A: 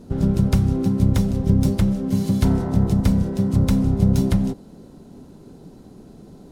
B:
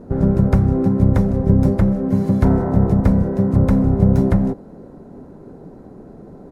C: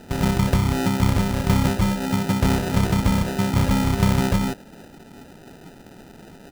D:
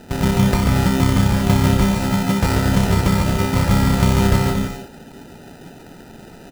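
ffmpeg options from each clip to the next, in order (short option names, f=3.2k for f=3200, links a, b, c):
-af "firequalizer=gain_entry='entry(210,0);entry(530,6);entry(880,3);entry(1800,1);entry(3000,-14)':delay=0.05:min_phase=1,volume=3dB"
-af "acrusher=samples=40:mix=1:aa=0.000001,volume=-5dB"
-af "aecho=1:1:140|231|290.2|328.6|353.6:0.631|0.398|0.251|0.158|0.1,volume=2dB"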